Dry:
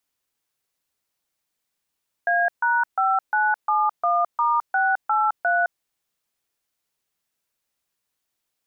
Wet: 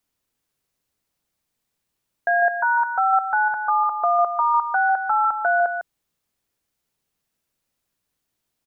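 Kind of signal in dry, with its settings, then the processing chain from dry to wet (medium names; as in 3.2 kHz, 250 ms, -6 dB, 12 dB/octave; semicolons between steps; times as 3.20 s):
DTMF "A#5971*683", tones 213 ms, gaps 140 ms, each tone -20 dBFS
bass shelf 390 Hz +9.5 dB; on a send: delay 152 ms -8 dB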